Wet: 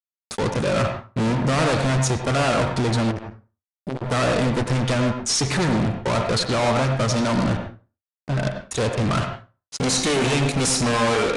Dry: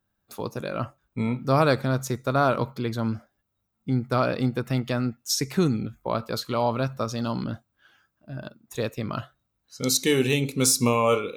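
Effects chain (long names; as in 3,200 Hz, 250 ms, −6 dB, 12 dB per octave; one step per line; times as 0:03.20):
parametric band 81 Hz +6.5 dB 0.51 octaves
fuzz pedal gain 39 dB, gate −44 dBFS
on a send at −5 dB: convolution reverb RT60 0.35 s, pre-delay 82 ms
on the sum: downsampling to 22,050 Hz
0:03.11–0:04.06: saturating transformer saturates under 540 Hz
level −6 dB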